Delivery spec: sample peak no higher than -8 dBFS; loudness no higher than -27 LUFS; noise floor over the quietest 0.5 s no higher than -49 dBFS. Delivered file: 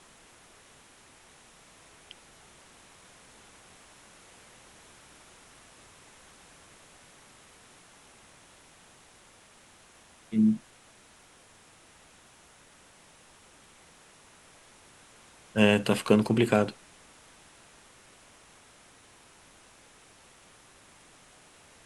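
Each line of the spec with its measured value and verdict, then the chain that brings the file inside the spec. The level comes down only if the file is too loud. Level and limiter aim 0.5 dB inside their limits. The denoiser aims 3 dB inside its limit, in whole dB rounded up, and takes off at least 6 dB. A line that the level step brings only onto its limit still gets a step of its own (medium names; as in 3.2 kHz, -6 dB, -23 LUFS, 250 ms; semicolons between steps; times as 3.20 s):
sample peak -6.5 dBFS: fail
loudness -25.5 LUFS: fail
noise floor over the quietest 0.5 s -57 dBFS: pass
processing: trim -2 dB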